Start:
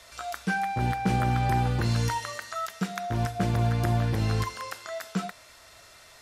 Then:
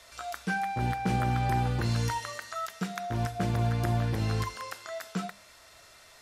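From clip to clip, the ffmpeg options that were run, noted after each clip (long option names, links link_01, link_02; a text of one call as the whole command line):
ffmpeg -i in.wav -af "bandreject=frequency=50:width_type=h:width=6,bandreject=frequency=100:width_type=h:width=6,bandreject=frequency=150:width_type=h:width=6,bandreject=frequency=200:width_type=h:width=6,volume=-2.5dB" out.wav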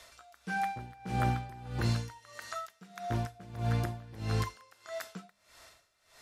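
ffmpeg -i in.wav -af "aeval=exprs='val(0)*pow(10,-21*(0.5-0.5*cos(2*PI*1.6*n/s))/20)':channel_layout=same" out.wav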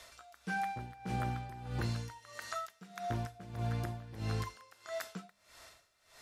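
ffmpeg -i in.wav -af "acompressor=threshold=-32dB:ratio=6" out.wav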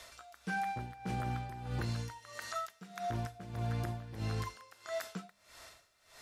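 ffmpeg -i in.wav -af "alimiter=level_in=6dB:limit=-24dB:level=0:latency=1:release=38,volume=-6dB,volume=2dB" out.wav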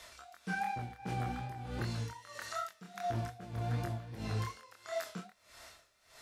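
ffmpeg -i in.wav -af "flanger=delay=22.5:depth=6.2:speed=2.6,volume=3dB" out.wav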